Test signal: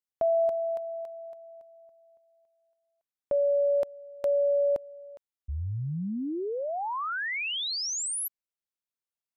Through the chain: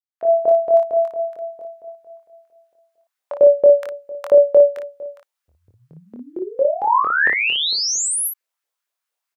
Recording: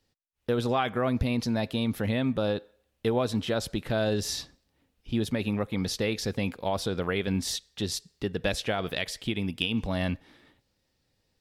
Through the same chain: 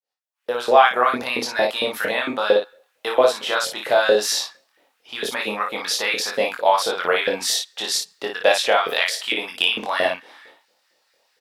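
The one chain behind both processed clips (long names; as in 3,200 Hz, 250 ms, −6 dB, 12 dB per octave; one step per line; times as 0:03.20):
fade in at the beginning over 0.90 s
auto-filter high-pass saw up 4.4 Hz 450–1,800 Hz
ambience of single reflections 24 ms −3 dB, 57 ms −5 dB
level +8 dB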